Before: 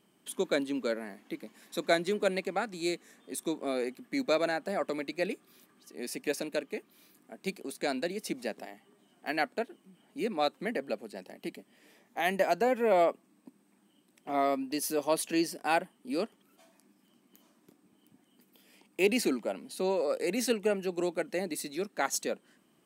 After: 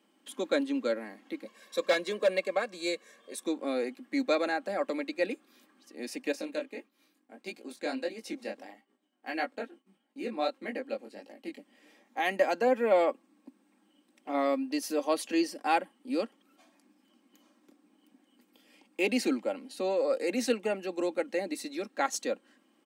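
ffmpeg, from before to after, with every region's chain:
-filter_complex "[0:a]asettb=1/sr,asplit=3[a][b][c];[a]atrim=end=1.454[d];[b]atrim=start=1.45:end=3.43,asetpts=PTS-STARTPTS,afade=t=in:d=0.004:c=qsin,afade=t=out:st=1.976:d=0.004:c=qsin,aecho=1:1:1.8:0.8,atrim=end_sample=87318,asoftclip=type=hard:threshold=-21dB[e];[c]atrim=start=3.426[f];[d][e]acrossfade=d=0.004:c1=hsin:c2=qsin[g];[g][f]acrossfade=d=0.004:c1=qsin:c2=hsin,asettb=1/sr,asplit=3[h][i][j];[h]atrim=end=6.324[k];[i]atrim=start=6.32:end=11.58,asetpts=PTS-STARTPTS,afade=t=in:d=0.004:c=qsin,afade=t=out:st=5.256:d=0.004:c=qsin,agate=range=-33dB:threshold=-58dB:ratio=3:release=100:detection=peak,flanger=delay=17.5:depth=6:speed=1.6[l];[j]atrim=start=11.576[m];[k][l]acrossfade=d=0.004:c1=hsin:c2=qsin[n];[n][m]acrossfade=d=0.004:c1=qsin:c2=hsin,highpass=f=230:w=0.5412,highpass=f=230:w=1.3066,equalizer=f=13k:t=o:w=1.1:g=-10,aecho=1:1:3.7:0.51"

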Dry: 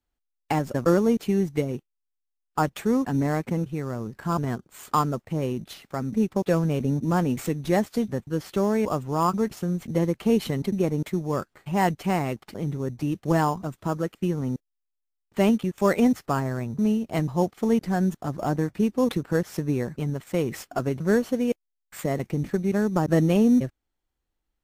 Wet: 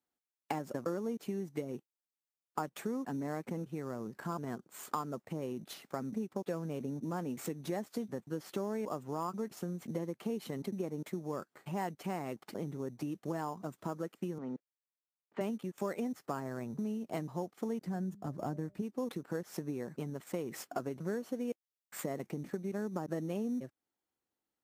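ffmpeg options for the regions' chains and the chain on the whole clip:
-filter_complex "[0:a]asettb=1/sr,asplit=3[a][b][c];[a]atrim=end=14.384[d];[b]atrim=start=14.38:end=15.41,asetpts=PTS-STARTPTS,afade=t=in:d=0.004:c=qsin,afade=t=out:st=1.026:d=0.004:c=qsin,highpass=110,lowpass=2.5k,lowshelf=f=200:g=-12[e];[c]atrim=start=15.406[f];[d][e]acrossfade=d=0.004:c1=hsin:c2=qsin[g];[g][f]acrossfade=d=0.004:c1=qsin:c2=hsin,asettb=1/sr,asplit=3[h][i][j];[h]atrim=end=17.854[k];[i]atrim=start=17.85:end=18.82,asetpts=PTS-STARTPTS,afade=t=in:d=0.004:c=qsin,afade=t=out:st=0.966:d=0.004:c=qsin,equalizer=f=64:w=0.38:g=14,bandreject=f=199.1:t=h:w=4,bandreject=f=398.2:t=h:w=4,bandreject=f=597.3:t=h:w=4[l];[j]atrim=start=18.816[m];[k][l]acrossfade=d=0.004:c1=hsin:c2=qsin[n];[n][m]acrossfade=d=0.004:c1=qsin:c2=hsin,equalizer=f=2.9k:t=o:w=1.6:g=-4,acompressor=threshold=-30dB:ratio=6,highpass=190,volume=-3dB"

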